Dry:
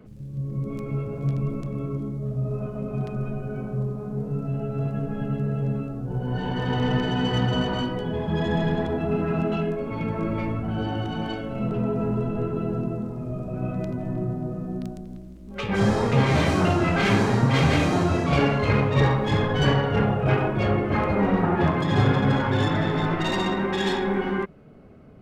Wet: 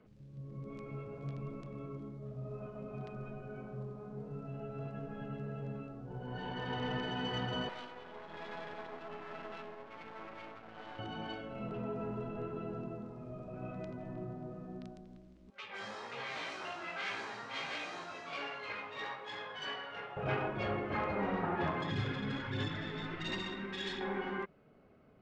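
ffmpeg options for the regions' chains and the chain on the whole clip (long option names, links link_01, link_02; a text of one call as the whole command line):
ffmpeg -i in.wav -filter_complex "[0:a]asettb=1/sr,asplit=3[link_01][link_02][link_03];[link_01]atrim=end=7.694[link_04];[link_02]atrim=start=7.69:end=10.99,asetpts=PTS-STARTPTS,afade=type=in:duration=0.004:curve=qsin,afade=type=out:start_time=3.296:duration=0.004:curve=qsin,bandpass=frequency=1100:width_type=q:width=0.55,aeval=exprs='max(val(0),0)':channel_layout=same[link_05];[link_03]atrim=start=10.986[link_06];[link_04][link_05]acrossfade=duration=0.004:curve1=hsin:curve2=qsin[link_07];[link_07][link_06]acrossfade=duration=0.004:curve1=qsin:curve2=hsin,asettb=1/sr,asplit=3[link_08][link_09][link_10];[link_08]atrim=end=15.504[link_11];[link_09]atrim=start=15.5:end=20.17,asetpts=PTS-STARTPTS,afade=type=in:duration=0.004:curve=qsin,afade=type=out:start_time=4.666:duration=0.004:curve=qsin,highpass=frequency=1200:poles=1,flanger=delay=16.5:depth=2.3:speed=1.3[link_12];[link_10]atrim=start=20.166[link_13];[link_11][link_12]acrossfade=duration=0.004:curve1=hsin:curve2=qsin[link_14];[link_14][link_13]acrossfade=duration=0.004:curve1=qsin:curve2=hsin,asettb=1/sr,asplit=3[link_15][link_16][link_17];[link_15]atrim=end=21.904[link_18];[link_16]atrim=start=21.9:end=24.01,asetpts=PTS-STARTPTS,afade=type=in:duration=0.004:curve=qsin,afade=type=out:start_time=2.106:duration=0.004:curve=qsin,equalizer=frequency=770:width_type=o:width=1.6:gain=-12.5,aphaser=in_gain=1:out_gain=1:delay=4.6:decay=0.34:speed=1.4:type=sinusoidal[link_19];[link_17]atrim=start=24.006[link_20];[link_18][link_19]acrossfade=duration=0.004:curve1=hsin:curve2=qsin[link_21];[link_21][link_20]acrossfade=duration=0.004:curve1=qsin:curve2=hsin,lowpass=5100,lowshelf=frequency=350:gain=-10,volume=-8.5dB" out.wav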